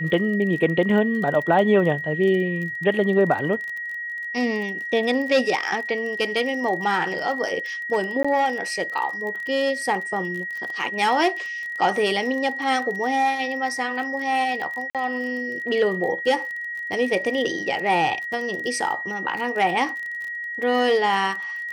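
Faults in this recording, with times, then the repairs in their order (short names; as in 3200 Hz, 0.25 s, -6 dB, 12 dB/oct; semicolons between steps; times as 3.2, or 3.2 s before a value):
crackle 24/s -30 dBFS
tone 1900 Hz -28 dBFS
8.23–8.24 gap 15 ms
14.9–14.95 gap 47 ms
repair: de-click; notch 1900 Hz, Q 30; interpolate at 8.23, 15 ms; interpolate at 14.9, 47 ms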